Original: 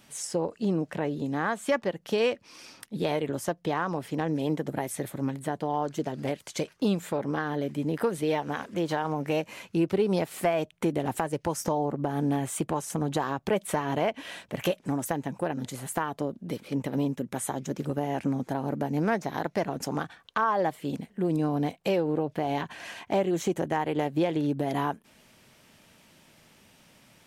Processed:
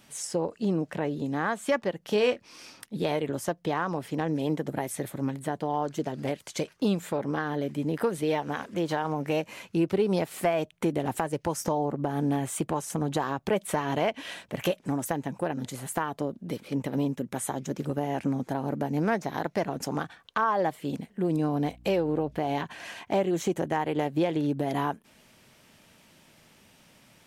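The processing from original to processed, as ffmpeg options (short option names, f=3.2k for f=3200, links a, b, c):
-filter_complex "[0:a]asettb=1/sr,asplit=3[a][b][c];[a]atrim=end=2.044[d];[b]atrim=start=2.04:end=2.71,asetpts=PTS-STARTPTS,afade=t=in:d=0.004:c=qsin,afade=t=out:st=0.666:d=0.004:c=qsin,asplit=2[e][f];[f]adelay=24,volume=-8.5dB[g];[e][g]amix=inputs=2:normalize=0,atrim=end_sample=29547[h];[c]atrim=start=2.706[i];[d][h]acrossfade=d=0.004:c1=hsin:c2=qsin[j];[j][i]acrossfade=d=0.004:c1=qsin:c2=hsin,asettb=1/sr,asplit=3[k][l][m];[k]atrim=end=13.784[n];[l]atrim=start=13.78:end=14.34,asetpts=PTS-STARTPTS,afade=t=in:d=0.004:c=qsin,afade=t=out:st=0.556:d=0.004:c=qsin,equalizer=f=4.5k:w=0.52:g=3[o];[m]atrim=start=14.336[p];[n][o]acrossfade=d=0.004:c1=hsin:c2=qsin[q];[q][p]acrossfade=d=0.004:c1=qsin:c2=hsin,asettb=1/sr,asplit=3[r][s][t];[r]atrim=end=21.664[u];[s]atrim=start=21.66:end=22.39,asetpts=PTS-STARTPTS,afade=t=in:d=0.004:c=qsin,afade=t=out:st=0.726:d=0.004:c=qsin,aeval=exprs='val(0)+0.00282*(sin(2*PI*60*n/s)+sin(2*PI*2*60*n/s)/2+sin(2*PI*3*60*n/s)/3+sin(2*PI*4*60*n/s)/4+sin(2*PI*5*60*n/s)/5)':c=same[v];[t]atrim=start=22.386[w];[u][v]acrossfade=d=0.004:c1=hsin:c2=qsin[x];[x][w]acrossfade=d=0.004:c1=qsin:c2=hsin"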